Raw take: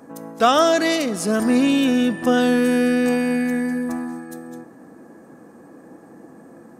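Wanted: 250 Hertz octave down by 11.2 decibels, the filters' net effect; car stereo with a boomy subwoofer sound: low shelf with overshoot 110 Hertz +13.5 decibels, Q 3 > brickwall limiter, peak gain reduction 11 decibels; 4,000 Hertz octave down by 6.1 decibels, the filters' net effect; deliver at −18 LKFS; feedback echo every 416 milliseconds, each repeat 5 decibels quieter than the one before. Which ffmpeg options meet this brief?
ffmpeg -i in.wav -af "lowshelf=frequency=110:width_type=q:width=3:gain=13.5,equalizer=frequency=250:width_type=o:gain=-8.5,equalizer=frequency=4000:width_type=o:gain=-8.5,aecho=1:1:416|832|1248|1664|2080|2496|2912:0.562|0.315|0.176|0.0988|0.0553|0.031|0.0173,volume=7.5dB,alimiter=limit=-8.5dB:level=0:latency=1" out.wav

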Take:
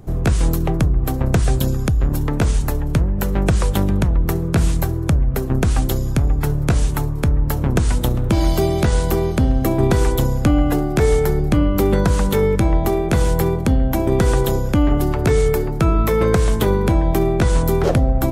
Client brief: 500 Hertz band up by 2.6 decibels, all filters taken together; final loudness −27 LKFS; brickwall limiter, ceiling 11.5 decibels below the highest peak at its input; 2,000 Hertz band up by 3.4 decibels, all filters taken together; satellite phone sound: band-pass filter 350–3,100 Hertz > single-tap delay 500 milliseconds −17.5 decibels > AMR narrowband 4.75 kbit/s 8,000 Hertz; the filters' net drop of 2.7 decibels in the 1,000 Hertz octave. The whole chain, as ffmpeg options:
ffmpeg -i in.wav -af "equalizer=frequency=500:width_type=o:gain=6.5,equalizer=frequency=1000:width_type=o:gain=-8,equalizer=frequency=2000:width_type=o:gain=7.5,alimiter=limit=-12dB:level=0:latency=1,highpass=350,lowpass=3100,aecho=1:1:500:0.133,volume=1dB" -ar 8000 -c:a libopencore_amrnb -b:a 4750 out.amr

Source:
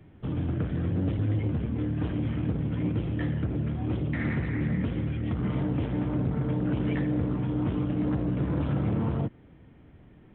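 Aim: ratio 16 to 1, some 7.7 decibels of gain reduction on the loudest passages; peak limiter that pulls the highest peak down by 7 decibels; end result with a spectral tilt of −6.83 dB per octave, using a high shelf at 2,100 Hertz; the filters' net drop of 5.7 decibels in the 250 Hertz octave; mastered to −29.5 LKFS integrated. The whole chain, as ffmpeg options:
ffmpeg -i in.wav -af "equalizer=frequency=250:width_type=o:gain=-8.5,highshelf=frequency=2100:gain=8.5,acompressor=threshold=-33dB:ratio=16,volume=10dB,alimiter=limit=-20.5dB:level=0:latency=1" out.wav

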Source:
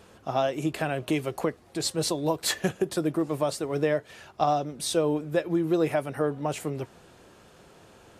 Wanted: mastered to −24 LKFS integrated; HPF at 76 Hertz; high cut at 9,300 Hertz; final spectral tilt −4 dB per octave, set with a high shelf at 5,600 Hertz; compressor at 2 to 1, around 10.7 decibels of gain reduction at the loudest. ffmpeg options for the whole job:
ffmpeg -i in.wav -af "highpass=76,lowpass=9300,highshelf=frequency=5600:gain=8.5,acompressor=threshold=-40dB:ratio=2,volume=13dB" out.wav

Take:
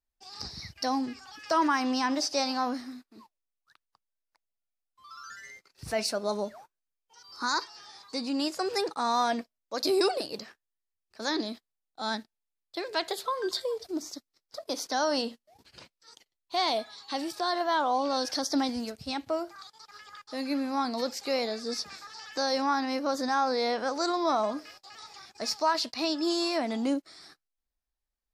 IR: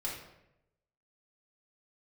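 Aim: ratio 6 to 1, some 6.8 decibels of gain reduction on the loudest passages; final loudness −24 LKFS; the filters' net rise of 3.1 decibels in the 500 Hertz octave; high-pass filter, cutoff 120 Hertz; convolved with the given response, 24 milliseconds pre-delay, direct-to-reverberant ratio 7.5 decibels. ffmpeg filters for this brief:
-filter_complex "[0:a]highpass=120,equalizer=frequency=500:width_type=o:gain=4,acompressor=threshold=-27dB:ratio=6,asplit=2[link_01][link_02];[1:a]atrim=start_sample=2205,adelay=24[link_03];[link_02][link_03]afir=irnorm=-1:irlink=0,volume=-10dB[link_04];[link_01][link_04]amix=inputs=2:normalize=0,volume=8.5dB"

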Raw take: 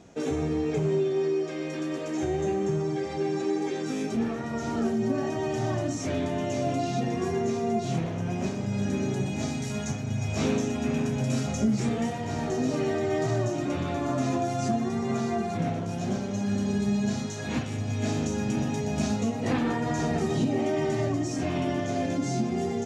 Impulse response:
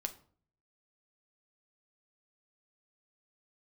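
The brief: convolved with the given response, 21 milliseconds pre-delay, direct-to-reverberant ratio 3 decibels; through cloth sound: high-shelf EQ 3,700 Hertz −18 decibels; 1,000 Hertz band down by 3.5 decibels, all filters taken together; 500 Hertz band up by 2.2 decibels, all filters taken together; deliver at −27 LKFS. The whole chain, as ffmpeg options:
-filter_complex "[0:a]equalizer=frequency=500:width_type=o:gain=5.5,equalizer=frequency=1000:width_type=o:gain=-8.5,asplit=2[link_01][link_02];[1:a]atrim=start_sample=2205,adelay=21[link_03];[link_02][link_03]afir=irnorm=-1:irlink=0,volume=-2.5dB[link_04];[link_01][link_04]amix=inputs=2:normalize=0,highshelf=frequency=3700:gain=-18,volume=-1dB"

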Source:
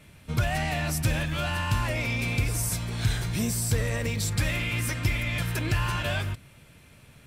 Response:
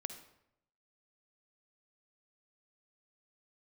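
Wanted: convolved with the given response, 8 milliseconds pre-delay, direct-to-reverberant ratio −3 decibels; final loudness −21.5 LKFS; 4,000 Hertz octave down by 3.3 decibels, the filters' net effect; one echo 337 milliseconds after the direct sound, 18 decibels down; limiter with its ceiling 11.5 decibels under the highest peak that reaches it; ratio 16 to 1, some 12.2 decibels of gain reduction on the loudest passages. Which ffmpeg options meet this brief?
-filter_complex "[0:a]equalizer=frequency=4000:width_type=o:gain=-4.5,acompressor=threshold=-32dB:ratio=16,alimiter=level_in=10.5dB:limit=-24dB:level=0:latency=1,volume=-10.5dB,aecho=1:1:337:0.126,asplit=2[link_01][link_02];[1:a]atrim=start_sample=2205,adelay=8[link_03];[link_02][link_03]afir=irnorm=-1:irlink=0,volume=5dB[link_04];[link_01][link_04]amix=inputs=2:normalize=0,volume=16dB"

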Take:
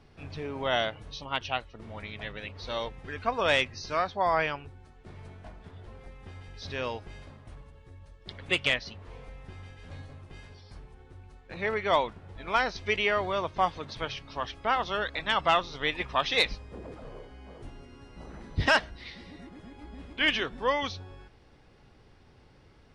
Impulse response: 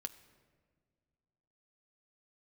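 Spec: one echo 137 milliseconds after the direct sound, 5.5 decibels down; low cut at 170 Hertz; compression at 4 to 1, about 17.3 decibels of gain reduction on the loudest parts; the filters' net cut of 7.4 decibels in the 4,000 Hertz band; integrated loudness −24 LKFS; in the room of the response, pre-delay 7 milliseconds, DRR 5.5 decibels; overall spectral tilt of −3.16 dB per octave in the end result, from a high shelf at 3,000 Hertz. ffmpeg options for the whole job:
-filter_complex "[0:a]highpass=170,highshelf=frequency=3000:gain=-7.5,equalizer=frequency=4000:width_type=o:gain=-4.5,acompressor=threshold=-42dB:ratio=4,aecho=1:1:137:0.531,asplit=2[link_01][link_02];[1:a]atrim=start_sample=2205,adelay=7[link_03];[link_02][link_03]afir=irnorm=-1:irlink=0,volume=-2.5dB[link_04];[link_01][link_04]amix=inputs=2:normalize=0,volume=20dB"

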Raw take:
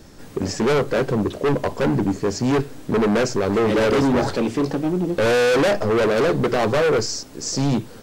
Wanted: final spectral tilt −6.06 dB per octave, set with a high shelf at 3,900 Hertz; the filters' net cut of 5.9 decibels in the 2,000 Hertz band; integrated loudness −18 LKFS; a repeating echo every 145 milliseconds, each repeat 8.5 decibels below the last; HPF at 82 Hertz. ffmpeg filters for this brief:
ffmpeg -i in.wav -af "highpass=82,equalizer=frequency=2000:width_type=o:gain=-7.5,highshelf=frequency=3900:gain=-4,aecho=1:1:145|290|435|580:0.376|0.143|0.0543|0.0206,volume=2.5dB" out.wav

